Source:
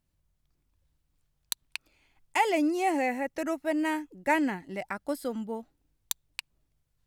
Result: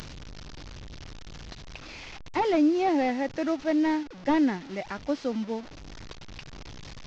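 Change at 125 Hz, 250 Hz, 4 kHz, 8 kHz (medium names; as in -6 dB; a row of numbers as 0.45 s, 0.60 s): +8.5 dB, +5.0 dB, -0.5 dB, no reading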